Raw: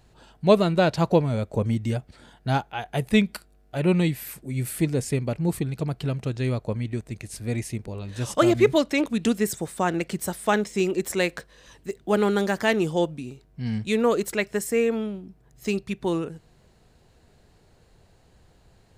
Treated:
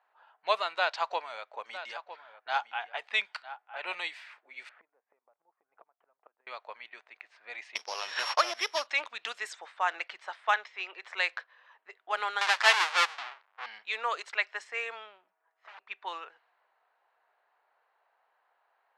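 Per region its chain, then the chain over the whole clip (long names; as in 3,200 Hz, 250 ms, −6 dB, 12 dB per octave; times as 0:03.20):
0:00.75–0:03.95: low-pass filter 12,000 Hz + single-tap delay 957 ms −13 dB
0:04.69–0:06.47: low-pass filter 1,000 Hz + gate with flip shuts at −21 dBFS, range −25 dB
0:07.75–0:08.87: samples sorted by size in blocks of 8 samples + downward expander −36 dBFS + multiband upward and downward compressor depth 100%
0:10.54–0:11.02: Bessel low-pass filter 3,800 Hz + low-shelf EQ 360 Hz −7.5 dB
0:12.41–0:13.66: each half-wave held at its own peak + tilt shelving filter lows −3.5 dB, about 880 Hz
0:15.24–0:15.81: comb filter 6.2 ms, depth 51% + tube saturation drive 29 dB, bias 0.5 + wrap-around overflow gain 34.5 dB
whole clip: low-pass filter 4,100 Hz 12 dB per octave; low-pass that shuts in the quiet parts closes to 1,300 Hz, open at −17 dBFS; high-pass filter 860 Hz 24 dB per octave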